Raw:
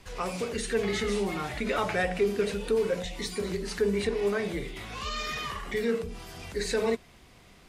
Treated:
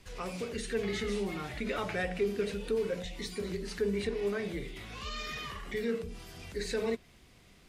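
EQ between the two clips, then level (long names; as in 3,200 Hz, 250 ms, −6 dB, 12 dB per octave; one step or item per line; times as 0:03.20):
dynamic equaliser 8,600 Hz, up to −4 dB, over −51 dBFS, Q 0.71
parametric band 900 Hz −5 dB 1.5 octaves
−3.5 dB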